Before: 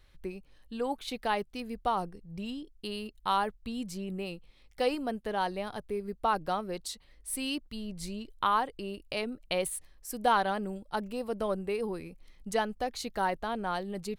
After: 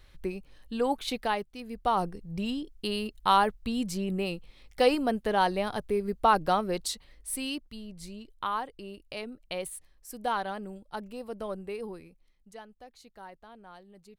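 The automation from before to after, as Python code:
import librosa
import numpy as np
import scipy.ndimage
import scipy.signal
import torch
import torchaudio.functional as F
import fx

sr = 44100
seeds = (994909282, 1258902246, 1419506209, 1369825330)

y = fx.gain(x, sr, db=fx.line((1.11, 5.0), (1.55, -4.0), (2.06, 6.0), (6.88, 6.0), (7.89, -4.5), (11.88, -4.5), (12.51, -17.0)))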